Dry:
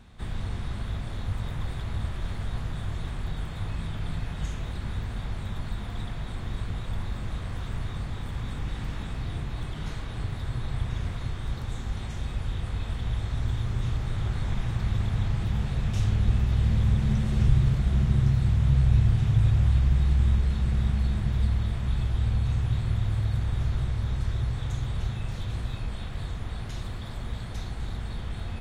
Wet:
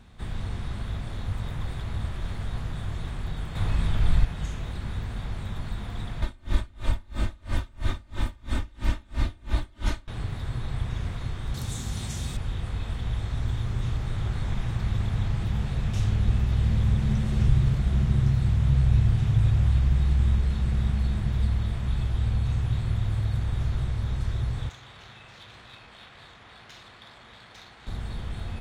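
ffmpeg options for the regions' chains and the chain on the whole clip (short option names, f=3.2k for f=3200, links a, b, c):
-filter_complex "[0:a]asettb=1/sr,asplit=3[a][b][c];[a]atrim=end=3.554[d];[b]atrim=start=3.55:end=4.25,asetpts=PTS-STARTPTS,afade=t=in:d=0.004:c=qsin,afade=t=out:st=0.696:d=0.004:c=qsin,asubboost=boost=10.5:cutoff=86,acontrast=31[e];[c]atrim=start=4.246[f];[d][e]acrossfade=d=0.004:c1=hsin:c2=qsin[g];[g][f]acrossfade=d=0.004:c1=qsin:c2=hsin,asettb=1/sr,asplit=3[h][i][j];[h]atrim=end=6.224[k];[i]atrim=start=6.22:end=10.08,asetpts=PTS-STARTPTS,afade=t=in:d=0.004:c=qsin,afade=t=out:st=3.856:d=0.004:c=qsin,aecho=1:1:3.3:0.9,atrim=end_sample=170226,acontrast=86,aeval=exprs='val(0)*pow(10,-32*(0.5-0.5*cos(2*PI*3*n/s))/20)':c=same[l];[j]atrim=start=10.076[m];[k][l]acrossfade=d=0.004:c1=hsin:c2=qsin[n];[n][m]acrossfade=d=0.004:c1=qsin:c2=hsin,asettb=1/sr,asplit=3[o][p][q];[o]atrim=end=11.544[r];[p]atrim=start=11.54:end=12.37,asetpts=PTS-STARTPTS,afade=t=in:d=0.004:c=qsin,afade=t=out:st=0.826:d=0.004:c=qsin,highpass=f=130:p=1,bass=f=250:g=7,treble=f=4k:g=15[s];[q]atrim=start=12.366[t];[r][s]acrossfade=d=0.004:c1=hsin:c2=qsin[u];[u][t]acrossfade=d=0.004:c1=qsin:c2=hsin,asettb=1/sr,asplit=3[v][w][x];[v]atrim=end=24.694[y];[w]atrim=start=24.69:end=27.87,asetpts=PTS-STARTPTS,afade=t=in:d=0.004:c=qsin,afade=t=out:st=3.176:d=0.004:c=qsin,highpass=f=1.3k:p=1,highshelf=f=3.7k:g=12,adynamicsmooth=sensitivity=4.5:basefreq=2.2k[z];[x]atrim=start=27.866[aa];[y][z]acrossfade=d=0.004:c1=hsin:c2=qsin[ab];[ab][aa]acrossfade=d=0.004:c1=qsin:c2=hsin"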